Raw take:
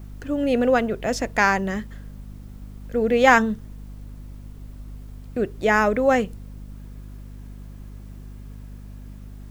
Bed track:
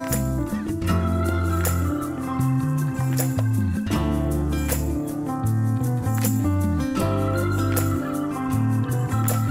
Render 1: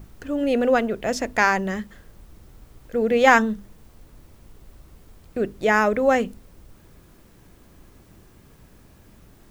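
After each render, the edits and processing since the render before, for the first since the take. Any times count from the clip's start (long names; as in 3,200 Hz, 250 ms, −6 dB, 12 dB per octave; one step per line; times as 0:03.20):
mains-hum notches 50/100/150/200/250/300 Hz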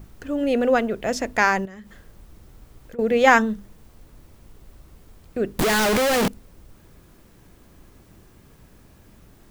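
0:01.65–0:02.99: downward compressor 16 to 1, threshold −36 dBFS
0:05.59–0:06.28: sign of each sample alone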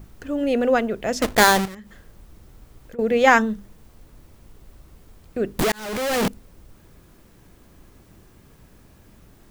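0:01.22–0:01.75: each half-wave held at its own peak
0:05.72–0:06.27: fade in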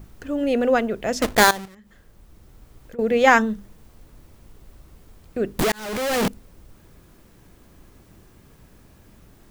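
0:01.51–0:03.22: fade in equal-power, from −15.5 dB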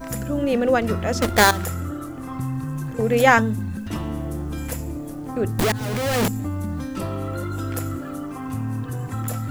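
mix in bed track −5.5 dB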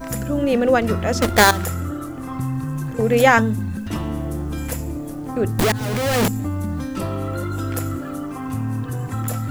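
level +2.5 dB
brickwall limiter −2 dBFS, peak gain reduction 3 dB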